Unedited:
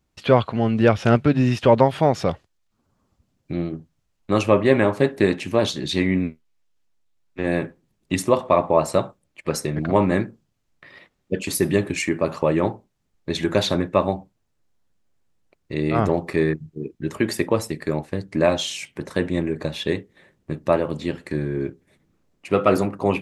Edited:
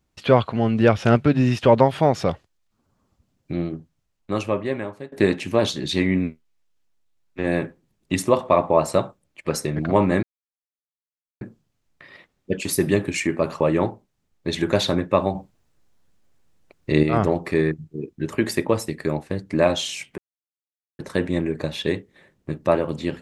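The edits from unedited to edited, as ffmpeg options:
-filter_complex "[0:a]asplit=6[a][b][c][d][e][f];[a]atrim=end=5.12,asetpts=PTS-STARTPTS,afade=t=out:st=3.66:d=1.46:silence=0.0749894[g];[b]atrim=start=5.12:end=10.23,asetpts=PTS-STARTPTS,afade=t=in:d=0.004:c=hsin:silence=0.0749894,afade=t=out:st=5.106:d=0.004:c=hsin,apad=pad_dur=1.18[h];[c]atrim=start=10.23:end=14.172,asetpts=PTS-STARTPTS,afade=t=in:d=0.004:c=hsin[i];[d]atrim=start=14.168:end=15.852,asetpts=PTS-STARTPTS,volume=7dB[j];[e]atrim=start=15.848:end=19,asetpts=PTS-STARTPTS,afade=t=out:st=3.148:d=0.004:c=hsin,apad=pad_dur=0.81[k];[f]atrim=start=19,asetpts=PTS-STARTPTS,afade=t=in:d=0.004:c=hsin[l];[g][h][i]concat=n=3:v=0:a=1[m];[m][j]acrossfade=d=0.004:c1=hsin:c2=hsin[n];[k][l]concat=n=2:v=0:a=1[o];[n][o]acrossfade=d=0.004:c1=hsin:c2=hsin"

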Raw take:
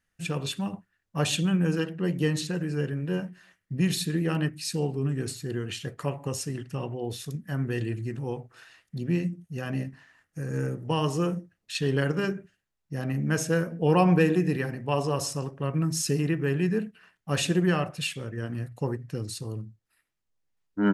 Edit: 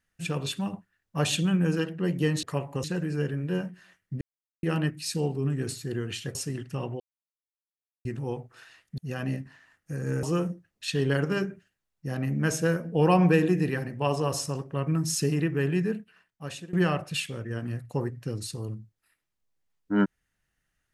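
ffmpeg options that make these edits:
-filter_complex "[0:a]asplit=11[a][b][c][d][e][f][g][h][i][j][k];[a]atrim=end=2.432[l];[b]atrim=start=5.938:end=6.352[m];[c]atrim=start=2.428:end=3.8,asetpts=PTS-STARTPTS,afade=t=out:st=1.368:d=0.004:c=hsin[n];[d]atrim=start=3.8:end=4.22,asetpts=PTS-STARTPTS,volume=0[o];[e]atrim=start=4.22:end=5.942,asetpts=PTS-STARTPTS,afade=t=in:d=0.004:c=hsin[p];[f]atrim=start=6.348:end=7,asetpts=PTS-STARTPTS,afade=t=out:st=0.648:d=0.004:c=hsin[q];[g]atrim=start=7:end=8.05,asetpts=PTS-STARTPTS,volume=0[r];[h]atrim=start=8.05:end=8.982,asetpts=PTS-STARTPTS,afade=t=in:d=0.004:c=hsin[s];[i]atrim=start=9.448:end=10.702[t];[j]atrim=start=11.098:end=17.6,asetpts=PTS-STARTPTS,afade=t=out:st=5.482:d=1.02:silence=0.0707946[u];[k]atrim=start=17.6,asetpts=PTS-STARTPTS,afade=t=in:d=0.004:c=hsin:silence=0.0707946[v];[l][m]acrossfade=d=0.004:c1=hsin:c2=hsin[w];[n][o][p]concat=n=3:v=0:a=1[x];[w][x]acrossfade=d=0.004:c1=hsin:c2=hsin[y];[q][r][s]concat=n=3:v=0:a=1[z];[y][z]acrossfade=d=0.004:c1=hsin:c2=hsin[aa];[aa][t]acrossfade=d=0.004:c1=hsin:c2=hsin[ab];[u][v]concat=n=2:v=0:a=1[ac];[ab][ac]acrossfade=d=0.004:c1=hsin:c2=hsin"

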